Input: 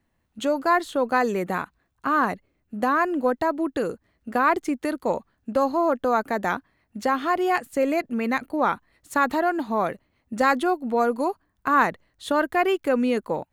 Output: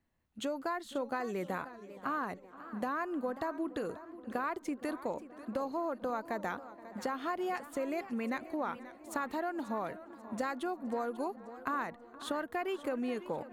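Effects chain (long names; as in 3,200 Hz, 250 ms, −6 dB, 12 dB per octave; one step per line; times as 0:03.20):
downward compressor, threshold −24 dBFS, peak gain reduction 10 dB
tape delay 472 ms, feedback 72%, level −18 dB, low-pass 2,300 Hz
feedback echo with a swinging delay time 538 ms, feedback 33%, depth 142 cents, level −15 dB
level −8 dB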